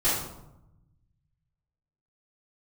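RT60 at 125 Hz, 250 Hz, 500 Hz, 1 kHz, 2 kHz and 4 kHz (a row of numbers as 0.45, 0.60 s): 2.1, 1.3, 0.90, 0.85, 0.60, 0.50 s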